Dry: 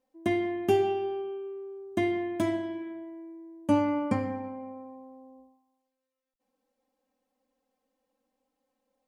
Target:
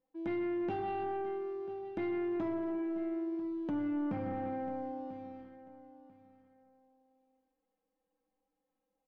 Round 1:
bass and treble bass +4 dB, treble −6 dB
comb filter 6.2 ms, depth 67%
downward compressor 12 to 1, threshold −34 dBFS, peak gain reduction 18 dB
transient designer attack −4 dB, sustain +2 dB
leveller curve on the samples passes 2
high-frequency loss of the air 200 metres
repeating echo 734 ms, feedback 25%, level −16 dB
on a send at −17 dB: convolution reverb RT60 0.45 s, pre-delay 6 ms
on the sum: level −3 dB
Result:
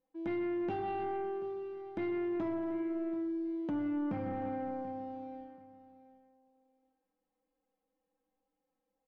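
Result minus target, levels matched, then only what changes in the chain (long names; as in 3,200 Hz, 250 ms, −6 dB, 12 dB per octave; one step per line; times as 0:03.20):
echo 258 ms early
change: repeating echo 992 ms, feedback 25%, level −16 dB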